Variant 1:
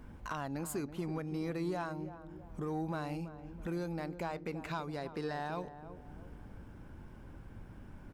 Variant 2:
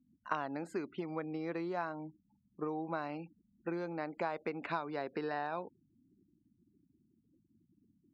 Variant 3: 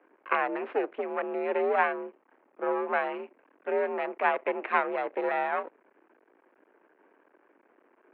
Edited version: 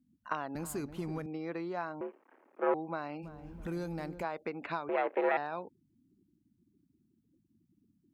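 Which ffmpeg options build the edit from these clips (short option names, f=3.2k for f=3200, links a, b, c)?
-filter_complex "[0:a]asplit=2[a][b];[2:a]asplit=2[c][d];[1:a]asplit=5[e][f][g][h][i];[e]atrim=end=0.552[j];[a]atrim=start=0.548:end=1.262[k];[f]atrim=start=1.258:end=2.012[l];[c]atrim=start=2.008:end=2.742[m];[g]atrim=start=2.738:end=3.26[n];[b]atrim=start=3.22:end=4.25[o];[h]atrim=start=4.21:end=4.892[p];[d]atrim=start=4.888:end=5.372[q];[i]atrim=start=5.368[r];[j][k]acrossfade=d=0.004:c1=hsin:c2=hsin[s];[s][l]acrossfade=d=0.004:c1=hsin:c2=hsin[t];[t][m]acrossfade=d=0.004:c1=hsin:c2=hsin[u];[u][n]acrossfade=d=0.004:c1=hsin:c2=hsin[v];[v][o]acrossfade=d=0.04:c1=tri:c2=tri[w];[w][p]acrossfade=d=0.04:c1=tri:c2=tri[x];[x][q]acrossfade=d=0.004:c1=hsin:c2=hsin[y];[y][r]acrossfade=d=0.004:c1=hsin:c2=hsin"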